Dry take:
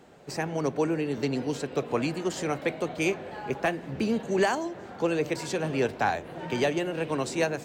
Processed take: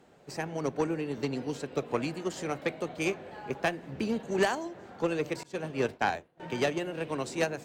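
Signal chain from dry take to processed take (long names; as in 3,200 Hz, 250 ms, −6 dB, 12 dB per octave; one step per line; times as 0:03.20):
harmonic generator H 3 −16 dB, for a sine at −14 dBFS
0:05.43–0:06.40: downward expander −30 dBFS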